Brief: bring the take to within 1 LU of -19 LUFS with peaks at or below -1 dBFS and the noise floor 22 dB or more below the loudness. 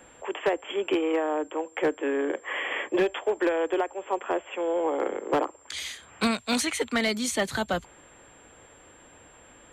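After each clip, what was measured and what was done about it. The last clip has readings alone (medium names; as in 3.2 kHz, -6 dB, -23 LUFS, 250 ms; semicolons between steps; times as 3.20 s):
clipped samples 0.4%; clipping level -17.5 dBFS; steady tone 7.4 kHz; tone level -56 dBFS; loudness -28.0 LUFS; peak level -17.5 dBFS; loudness target -19.0 LUFS
-> clip repair -17.5 dBFS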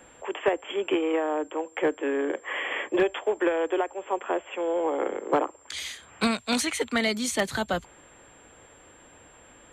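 clipped samples 0.0%; steady tone 7.4 kHz; tone level -56 dBFS
-> band-stop 7.4 kHz, Q 30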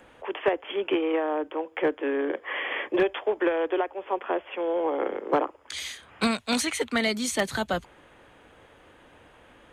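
steady tone not found; loudness -28.0 LUFS; peak level -8.5 dBFS; loudness target -19.0 LUFS
-> trim +9 dB; peak limiter -1 dBFS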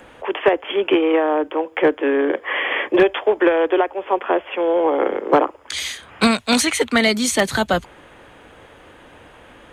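loudness -19.0 LUFS; peak level -1.0 dBFS; noise floor -46 dBFS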